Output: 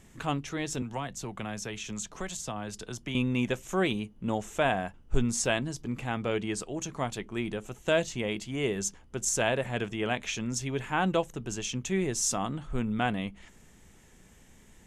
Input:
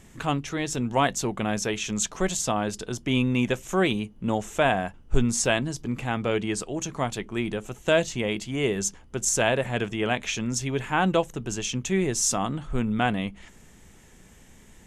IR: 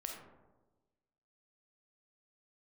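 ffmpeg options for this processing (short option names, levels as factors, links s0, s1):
-filter_complex "[0:a]asettb=1/sr,asplit=3[s0][s1][s2];[s0]atrim=end=0.824[s3];[s1]atrim=start=0.82:end=3.15,asetpts=PTS-STARTPTS,afade=t=in:d=0.004:c=qsin,afade=t=out:st=2.326:d=0.004:c=qsin,acrossover=split=190|660[s4][s5][s6];[s4]acompressor=threshold=0.02:ratio=4[s7];[s5]acompressor=threshold=0.0126:ratio=4[s8];[s6]acompressor=threshold=0.0251:ratio=4[s9];[s7][s8][s9]amix=inputs=3:normalize=0[s10];[s2]atrim=start=3.146[s11];[s3][s10]acrossfade=d=0.004:c1=hsin:c2=qsin[s12];[s12][s11]acrossfade=d=0.004:c1=qsin:c2=hsin,volume=0.596"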